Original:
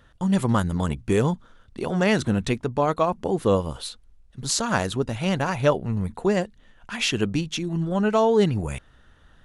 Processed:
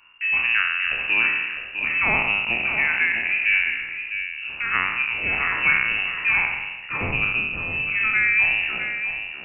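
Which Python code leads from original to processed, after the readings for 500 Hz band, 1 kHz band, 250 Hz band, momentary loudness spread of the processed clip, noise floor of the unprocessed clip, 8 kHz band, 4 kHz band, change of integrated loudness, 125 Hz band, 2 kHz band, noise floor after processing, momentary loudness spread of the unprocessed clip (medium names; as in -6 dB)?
-17.0 dB, -3.5 dB, -16.5 dB, 9 LU, -56 dBFS, under -40 dB, +1.0 dB, +3.5 dB, -14.0 dB, +15.0 dB, -36 dBFS, 12 LU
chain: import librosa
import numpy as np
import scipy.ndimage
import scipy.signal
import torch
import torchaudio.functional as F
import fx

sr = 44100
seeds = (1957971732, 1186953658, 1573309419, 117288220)

y = fx.spec_trails(x, sr, decay_s=1.19)
y = y + 10.0 ** (-8.5 / 20.0) * np.pad(y, (int(654 * sr / 1000.0), 0))[:len(y)]
y = fx.freq_invert(y, sr, carrier_hz=2800)
y = F.gain(torch.from_numpy(y), -2.0).numpy()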